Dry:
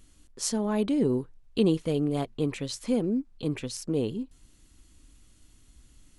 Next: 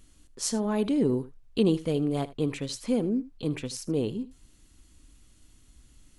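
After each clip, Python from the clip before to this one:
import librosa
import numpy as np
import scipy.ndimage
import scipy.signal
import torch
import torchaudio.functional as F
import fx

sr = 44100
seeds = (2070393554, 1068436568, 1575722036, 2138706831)

y = x + 10.0 ** (-17.5 / 20.0) * np.pad(x, (int(78 * sr / 1000.0), 0))[:len(x)]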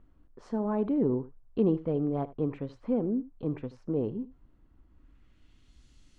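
y = fx.filter_sweep_lowpass(x, sr, from_hz=1100.0, to_hz=5100.0, start_s=4.89, end_s=5.83, q=1.1)
y = y * librosa.db_to_amplitude(-2.5)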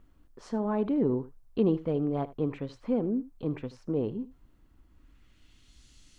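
y = fx.high_shelf(x, sr, hz=2200.0, db=10.0)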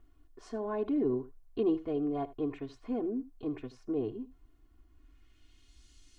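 y = x + 0.97 * np.pad(x, (int(2.8 * sr / 1000.0), 0))[:len(x)]
y = y * librosa.db_to_amplitude(-6.5)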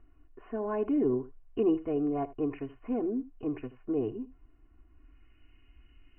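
y = fx.brickwall_lowpass(x, sr, high_hz=3100.0)
y = y * librosa.db_to_amplitude(2.5)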